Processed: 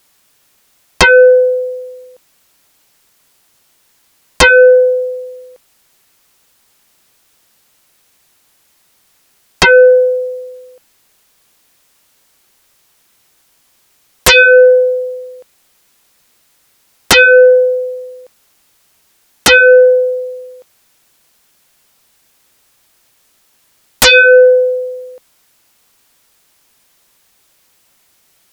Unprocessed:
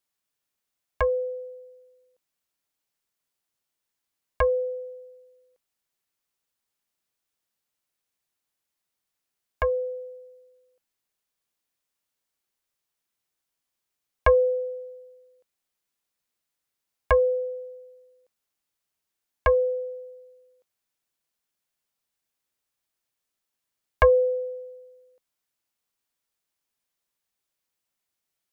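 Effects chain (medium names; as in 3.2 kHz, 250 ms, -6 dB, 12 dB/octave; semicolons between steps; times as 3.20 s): sine folder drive 17 dB, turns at -9.5 dBFS; trim +7.5 dB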